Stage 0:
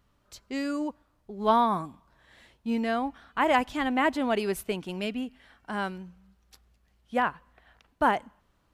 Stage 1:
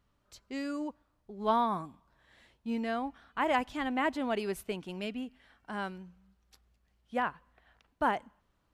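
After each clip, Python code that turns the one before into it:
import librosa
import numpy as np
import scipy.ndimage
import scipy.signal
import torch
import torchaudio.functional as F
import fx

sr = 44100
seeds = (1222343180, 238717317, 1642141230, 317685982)

y = fx.high_shelf(x, sr, hz=11000.0, db=-4.5)
y = y * librosa.db_to_amplitude(-5.5)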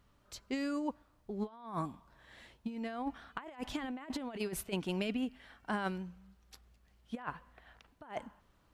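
y = fx.over_compress(x, sr, threshold_db=-37.0, ratio=-0.5)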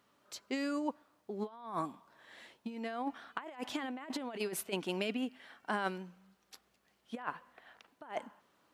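y = scipy.signal.sosfilt(scipy.signal.butter(2, 260.0, 'highpass', fs=sr, output='sos'), x)
y = y * librosa.db_to_amplitude(2.0)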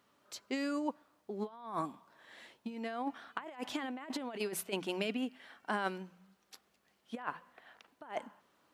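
y = fx.hum_notches(x, sr, base_hz=60, count=3)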